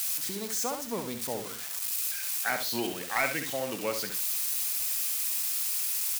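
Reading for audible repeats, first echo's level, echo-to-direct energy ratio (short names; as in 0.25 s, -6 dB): 2, -7.0 dB, -7.0 dB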